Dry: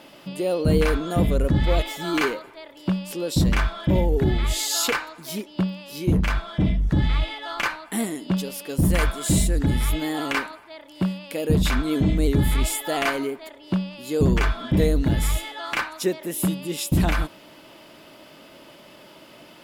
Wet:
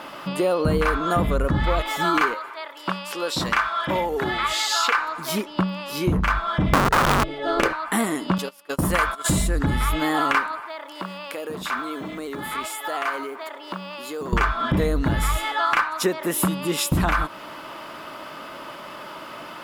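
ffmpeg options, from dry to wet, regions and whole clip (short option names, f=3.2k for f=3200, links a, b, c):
-filter_complex "[0:a]asettb=1/sr,asplit=3[a][b][c];[a]atrim=end=2.344[d];[b]atrim=start=2.34:end=4.98,asetpts=PTS-STARTPTS,afade=t=in:d=0.004:c=qsin,afade=t=out:st=2.636:d=0.004:c=qsin,highpass=f=880:p=1,acrossover=split=5900[e][f];[f]acompressor=threshold=-42dB:ratio=4:attack=1:release=60[g];[e][g]amix=inputs=2:normalize=0[h];[c]atrim=start=4.976[i];[d][h]acrossfade=d=0.004:c1=hsin:c2=qsin[j];[j][i]acrossfade=d=0.004:c1=qsin:c2=hsin,asettb=1/sr,asplit=3[k][l][m];[k]atrim=end=6.734[n];[l]atrim=start=6.73:end=7.73,asetpts=PTS-STARTPTS,afade=t=in:d=0.004:c=qsin,afade=t=out:st=0.996:d=0.004:c=qsin,lowshelf=f=680:t=q:w=3:g=13.5,bandreject=f=144:t=h:w=4,bandreject=f=288:t=h:w=4,bandreject=f=432:t=h:w=4,bandreject=f=576:t=h:w=4,bandreject=f=720:t=h:w=4,bandreject=f=864:t=h:w=4,bandreject=f=1.008k:t=h:w=4,bandreject=f=1.152k:t=h:w=4,bandreject=f=1.296k:t=h:w=4,bandreject=f=1.44k:t=h:w=4,bandreject=f=1.584k:t=h:w=4,bandreject=f=1.728k:t=h:w=4,bandreject=f=1.872k:t=h:w=4,bandreject=f=2.016k:t=h:w=4,bandreject=f=2.16k:t=h:w=4,bandreject=f=2.304k:t=h:w=4,bandreject=f=2.448k:t=h:w=4,bandreject=f=2.592k:t=h:w=4,bandreject=f=2.736k:t=h:w=4,bandreject=f=2.88k:t=h:w=4,bandreject=f=3.024k:t=h:w=4,bandreject=f=3.168k:t=h:w=4,bandreject=f=3.312k:t=h:w=4,bandreject=f=3.456k:t=h:w=4,bandreject=f=3.6k:t=h:w=4,bandreject=f=3.744k:t=h:w=4,bandreject=f=3.888k:t=h:w=4,bandreject=f=4.032k:t=h:w=4,bandreject=f=4.176k:t=h:w=4,aeval=exprs='(mod(2*val(0)+1,2)-1)/2':c=same[o];[m]atrim=start=7.726[p];[n][o]acrossfade=d=0.004:c1=hsin:c2=qsin[q];[q][p]acrossfade=d=0.004:c1=qsin:c2=hsin,asettb=1/sr,asplit=3[r][s][t];[r]atrim=end=8.384[u];[s]atrim=start=8.38:end=9.29,asetpts=PTS-STARTPTS,afade=t=in:d=0.004:c=qsin,afade=t=out:st=0.906:d=0.004:c=qsin,agate=range=-23dB:threshold=-31dB:ratio=16:release=100:detection=peak,lowshelf=f=210:g=-10[v];[t]atrim=start=9.286[w];[u][v]acrossfade=d=0.004:c1=hsin:c2=qsin[x];[x][w]acrossfade=d=0.004:c1=qsin:c2=hsin,asettb=1/sr,asplit=3[y][z][aa];[y]atrim=end=10.604[ab];[z]atrim=start=10.6:end=14.33,asetpts=PTS-STARTPTS,afade=t=in:d=0.004:c=qsin,afade=t=out:st=3.726:d=0.004:c=qsin,highpass=310,acompressor=threshold=-39dB:ratio=3:attack=3.2:release=140:knee=1:detection=peak,acrusher=bits=7:mode=log:mix=0:aa=0.000001[ac];[aa]atrim=start=14.326[ad];[ab][ac]acrossfade=d=0.004:c1=hsin:c2=qsin[ae];[ae][ad]acrossfade=d=0.004:c1=qsin:c2=hsin,equalizer=f=1.2k:w=1.2:g=14,acompressor=threshold=-23dB:ratio=4,volume=4.5dB"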